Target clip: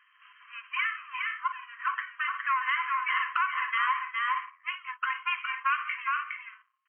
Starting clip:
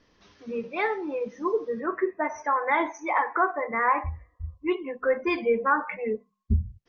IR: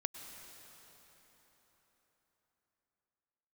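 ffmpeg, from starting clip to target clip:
-filter_complex "[0:a]aeval=exprs='if(lt(val(0),0),0.251*val(0),val(0))':c=same,aecho=1:1:412|466:0.447|0.158,asplit=2[a][b];[b]alimiter=limit=-22dB:level=0:latency=1:release=16,volume=0dB[c];[a][c]amix=inputs=2:normalize=0,afftfilt=real='re*between(b*sr/4096,1000,3200)':imag='im*between(b*sr/4096,1000,3200)':win_size=4096:overlap=0.75,acompressor=threshold=-29dB:ratio=2.5,volume=3dB"

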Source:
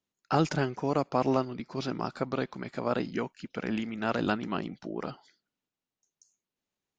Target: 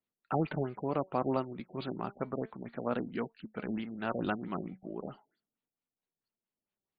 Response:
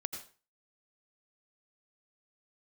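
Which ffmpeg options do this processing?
-af "flanger=delay=4.2:depth=1.3:regen=83:speed=0.34:shape=sinusoidal,afftfilt=real='re*lt(b*sr/1024,770*pow(4900/770,0.5+0.5*sin(2*PI*4.5*pts/sr)))':imag='im*lt(b*sr/1024,770*pow(4900/770,0.5+0.5*sin(2*PI*4.5*pts/sr)))':win_size=1024:overlap=0.75"

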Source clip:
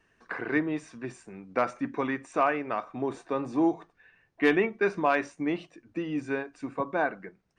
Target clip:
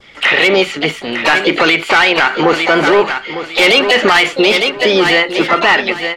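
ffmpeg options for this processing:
-filter_complex "[0:a]equalizer=f=3.2k:t=o:w=2.9:g=10,asetrate=54243,aresample=44100,lowpass=4.4k,asoftclip=type=tanh:threshold=-18.5dB,adynamicequalizer=threshold=0.01:dfrequency=2400:dqfactor=1.2:tfrequency=2400:tqfactor=1.2:attack=5:release=100:ratio=0.375:range=2.5:mode=boostabove:tftype=bell,asplit=3[a][b][c];[b]asetrate=58866,aresample=44100,atempo=0.749154,volume=-16dB[d];[c]asetrate=66075,aresample=44100,atempo=0.66742,volume=-9dB[e];[a][d][e]amix=inputs=3:normalize=0,aecho=1:1:903|1806|2709:0.224|0.0582|0.0151,alimiter=level_in=21.5dB:limit=-1dB:release=50:level=0:latency=1,volume=-1dB"

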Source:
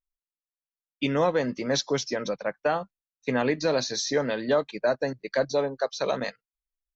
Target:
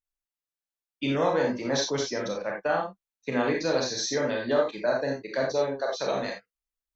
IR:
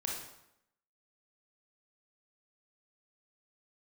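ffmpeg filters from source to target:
-filter_complex "[0:a]asettb=1/sr,asplit=3[a][b][c];[a]atrim=end=1.294[d];[b]atrim=start=1.29:end=1.79,asetpts=PTS-STARTPTS,afade=t=in:d=0.004:c=qsin,afade=t=out:st=0.496:d=0.004:c=qsin,equalizer=f=890:w=3.7:g=7.5[e];[c]atrim=start=1.786[f];[d][e]acrossfade=d=0.004:c1=hsin:c2=qsin[g];[g][f]acrossfade=d=0.004:c1=qsin:c2=hsin[h];[1:a]atrim=start_sample=2205,atrim=end_sample=4410[i];[h][i]afir=irnorm=-1:irlink=0,volume=-2dB"

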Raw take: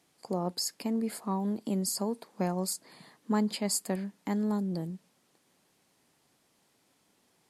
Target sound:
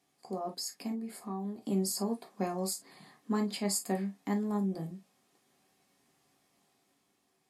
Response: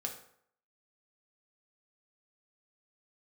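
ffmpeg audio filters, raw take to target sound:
-filter_complex "[0:a]asettb=1/sr,asplit=3[a][b][c];[a]atrim=end=0.924[d];[b]atrim=start=0.92:end=1.63,asetpts=PTS-STARTPTS,afade=t=in:d=0.004:c=qsin,afade=t=out:st=0.706:d=0.004:c=qsin,acompressor=threshold=-36dB:ratio=4[e];[c]atrim=start=1.626[f];[d][e]acrossfade=d=0.004:c1=hsin:c2=qsin[g];[g][f]acrossfade=d=0.004:c1=qsin:c2=hsin,asettb=1/sr,asplit=3[h][i][j];[h]atrim=end=4.394[k];[i]atrim=start=4.39:end=4.83,asetpts=PTS-STARTPTS,afade=t=in:d=0.004:c=qsin,afade=t=out:st=0.436:d=0.004:c=qsin,equalizer=f=4.4k:w=6.2:g=-10[l];[j]atrim=start=4.826[m];[k][l]acrossfade=d=0.004:c1=hsin:c2=qsin[n];[n][m]acrossfade=d=0.004:c1=qsin:c2=hsin,dynaudnorm=f=170:g=11:m=4dB[o];[1:a]atrim=start_sample=2205,afade=t=out:st=0.14:d=0.01,atrim=end_sample=6615,asetrate=66150,aresample=44100[p];[o][p]afir=irnorm=-1:irlink=0,volume=-2dB"

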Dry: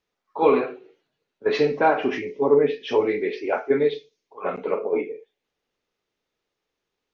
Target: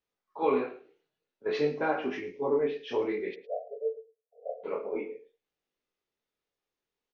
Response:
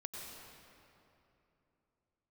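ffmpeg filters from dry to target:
-filter_complex "[0:a]flanger=delay=19.5:depth=5.7:speed=0.53,asplit=3[a][b][c];[a]afade=t=out:st=3.34:d=0.02[d];[b]asuperpass=centerf=570:order=20:qfactor=1.9,afade=t=in:st=3.34:d=0.02,afade=t=out:st=4.63:d=0.02[e];[c]afade=t=in:st=4.63:d=0.02[f];[d][e][f]amix=inputs=3:normalize=0,asplit=2[g][h];[h]aecho=0:1:109:0.15[i];[g][i]amix=inputs=2:normalize=0,volume=-6dB"

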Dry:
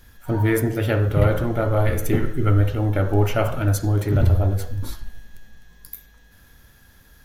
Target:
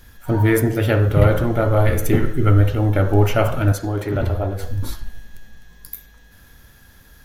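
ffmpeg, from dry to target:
-filter_complex "[0:a]asettb=1/sr,asplit=3[a][b][c];[a]atrim=end=3.724[d];[b]atrim=start=3.72:end=4.63,asetpts=PTS-STARTPTS,afade=t=in:d=0.004:c=qsin,afade=t=out:st=0.906:d=0.004:c=qsin,bass=f=250:g=-9,treble=f=4k:g=-7[e];[c]atrim=start=4.626[f];[d][e]acrossfade=d=0.004:c1=hsin:c2=qsin[g];[g][f]acrossfade=d=0.004:c1=qsin:c2=hsin,volume=3.5dB"

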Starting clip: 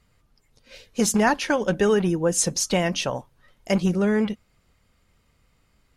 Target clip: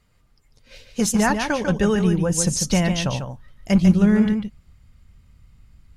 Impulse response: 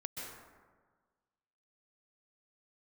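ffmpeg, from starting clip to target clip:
-filter_complex "[0:a]asubboost=boost=6:cutoff=180,asplit=2[a][b];[1:a]atrim=start_sample=2205,atrim=end_sample=3969,adelay=146[c];[b][c]afir=irnorm=-1:irlink=0,volume=-2.5dB[d];[a][d]amix=inputs=2:normalize=0"

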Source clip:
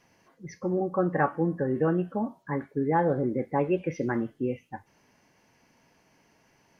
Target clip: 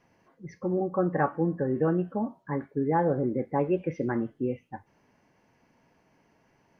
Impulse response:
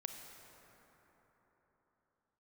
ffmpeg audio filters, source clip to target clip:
-af "highshelf=f=2.8k:g=-11.5"

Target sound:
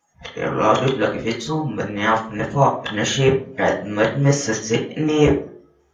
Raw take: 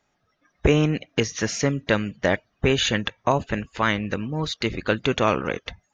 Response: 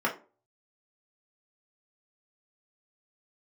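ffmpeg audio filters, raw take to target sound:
-filter_complex "[0:a]areverse[a];[1:a]atrim=start_sample=2205,asetrate=26460,aresample=44100[b];[a][b]afir=irnorm=-1:irlink=0,crystalizer=i=5:c=0,volume=-12dB"

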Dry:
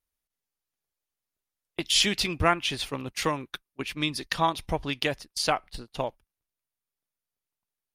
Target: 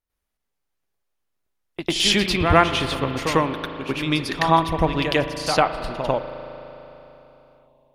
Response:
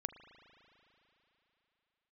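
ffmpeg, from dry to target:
-filter_complex "[0:a]highshelf=f=2.9k:g=-9,asplit=2[a][b];[1:a]atrim=start_sample=2205,adelay=98[c];[b][c]afir=irnorm=-1:irlink=0,volume=9.5dB[d];[a][d]amix=inputs=2:normalize=0,volume=1dB"

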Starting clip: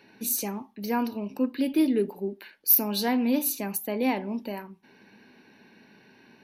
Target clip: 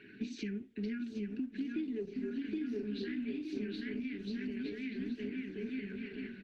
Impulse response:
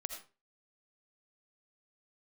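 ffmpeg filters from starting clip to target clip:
-filter_complex "[0:a]lowpass=f=3.4k:w=0.5412,lowpass=f=3.4k:w=1.3066,equalizer=f=800:t=o:w=0.21:g=-2.5,aecho=1:1:770|1309|1686|1950|2135:0.631|0.398|0.251|0.158|0.1,asubboost=boost=2:cutoff=68,asettb=1/sr,asplit=3[a][b][c];[a]atrim=end=2.044[d];[b]atrim=start=2.04:end=4.04,asetpts=PTS-STARTPTS,afade=t=in:d=0.004:c=qsin,afade=t=out:st=1.996:d=0.004:c=qsin,asplit=2[e][f];[f]adelay=33,volume=-4dB[g];[e][g]amix=inputs=2:normalize=0,atrim=end_sample=88200[h];[c]atrim=start=4.036[i];[d][h]acrossfade=d=0.004:c1=hsin:c2=qsin[j];[j][i]acrossfade=d=0.004:c1=qsin:c2=hsin,flanger=delay=0.1:depth=4.1:regen=-70:speed=0.37:shape=sinusoidal,acompressor=threshold=-40dB:ratio=20,afftfilt=real='re*(1-between(b*sr/4096,450,1400))':imag='im*(1-between(b*sr/4096,450,1400))':win_size=4096:overlap=0.75,volume=6.5dB" -ar 48000 -c:a libopus -b:a 16k

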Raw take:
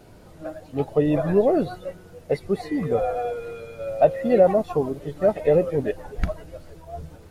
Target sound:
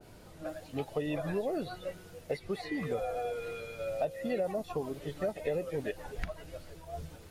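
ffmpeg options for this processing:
-filter_complex "[0:a]highshelf=f=2.6k:g=11,acrossover=split=620|3700[a][b][c];[a]acompressor=threshold=-28dB:ratio=4[d];[b]acompressor=threshold=-35dB:ratio=4[e];[c]acompressor=threshold=-59dB:ratio=4[f];[d][e][f]amix=inputs=3:normalize=0,adynamicequalizer=threshold=0.00708:dfrequency=1800:dqfactor=0.7:tfrequency=1800:tqfactor=0.7:attack=5:release=100:ratio=0.375:range=2:mode=boostabove:tftype=highshelf,volume=-6dB"

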